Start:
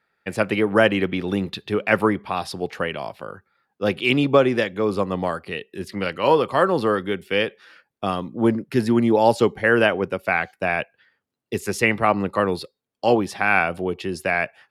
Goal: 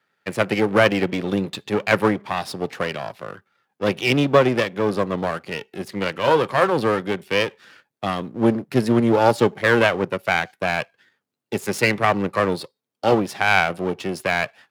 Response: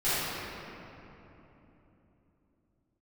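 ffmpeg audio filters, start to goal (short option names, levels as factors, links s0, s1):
-af "aeval=exprs='if(lt(val(0),0),0.251*val(0),val(0))':c=same,highpass=f=110:w=0.5412,highpass=f=110:w=1.3066,volume=1.58"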